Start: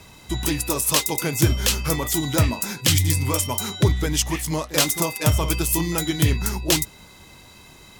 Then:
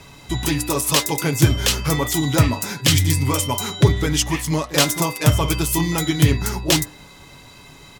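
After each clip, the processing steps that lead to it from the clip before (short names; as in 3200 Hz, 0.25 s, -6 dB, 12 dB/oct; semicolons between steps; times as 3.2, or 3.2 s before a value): high shelf 7500 Hz -6.5 dB; comb 7.1 ms, depth 36%; de-hum 99.82 Hz, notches 19; gain +3.5 dB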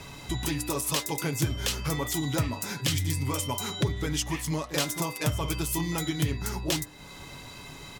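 compressor 2:1, threshold -34 dBFS, peak gain reduction 14.5 dB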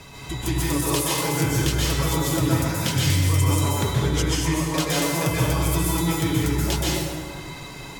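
plate-style reverb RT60 1.9 s, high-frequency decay 0.55×, pre-delay 0.115 s, DRR -6 dB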